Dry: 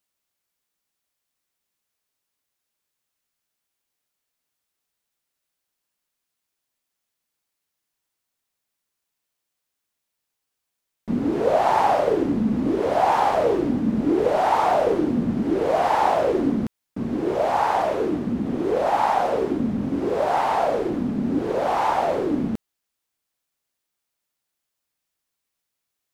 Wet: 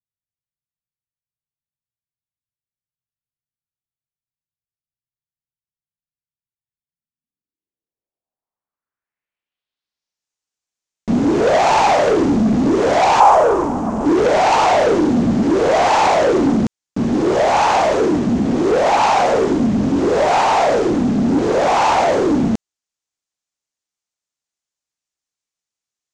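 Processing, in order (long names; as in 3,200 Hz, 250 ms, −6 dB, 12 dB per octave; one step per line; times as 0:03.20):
leveller curve on the samples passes 3
0:13.20–0:14.06: octave-band graphic EQ 125/250/1,000/2,000/4,000 Hz −6/−7/+10/−7/−10 dB
low-pass filter sweep 130 Hz → 6,800 Hz, 0:06.79–0:10.26
level −1 dB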